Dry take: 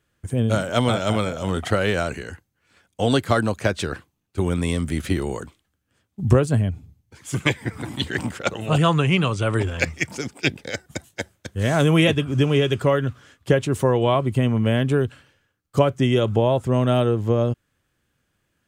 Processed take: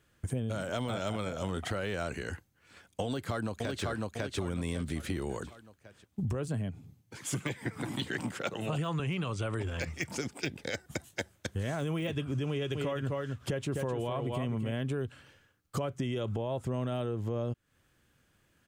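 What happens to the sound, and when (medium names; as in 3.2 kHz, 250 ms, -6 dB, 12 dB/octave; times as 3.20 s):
3.05–3.84 s: echo throw 550 ms, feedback 30%, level -4 dB
6.48–9.00 s: high-pass 110 Hz 24 dB/octave
12.49–14.72 s: delay 255 ms -7 dB
whole clip: de-esser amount 60%; peak limiter -14 dBFS; compression 4:1, threshold -35 dBFS; trim +2 dB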